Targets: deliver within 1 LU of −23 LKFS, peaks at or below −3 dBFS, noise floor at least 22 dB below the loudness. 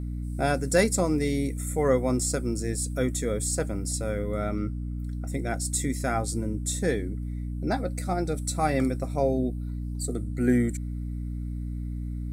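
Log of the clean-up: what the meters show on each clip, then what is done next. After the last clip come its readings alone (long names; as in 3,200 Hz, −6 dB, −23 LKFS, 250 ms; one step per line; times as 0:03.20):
mains hum 60 Hz; hum harmonics up to 300 Hz; level of the hum −30 dBFS; integrated loudness −28.0 LKFS; sample peak −8.5 dBFS; target loudness −23.0 LKFS
→ mains-hum notches 60/120/180/240/300 Hz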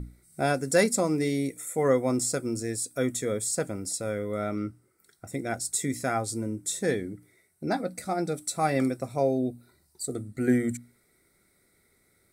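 mains hum none found; integrated loudness −28.5 LKFS; sample peak −10.0 dBFS; target loudness −23.0 LKFS
→ level +5.5 dB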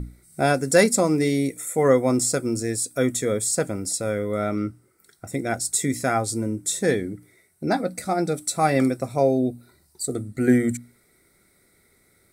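integrated loudness −23.0 LKFS; sample peak −4.5 dBFS; background noise floor −62 dBFS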